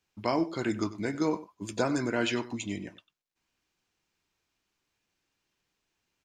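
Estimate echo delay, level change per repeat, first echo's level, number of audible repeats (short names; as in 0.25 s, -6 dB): 97 ms, no steady repeat, -16.5 dB, 1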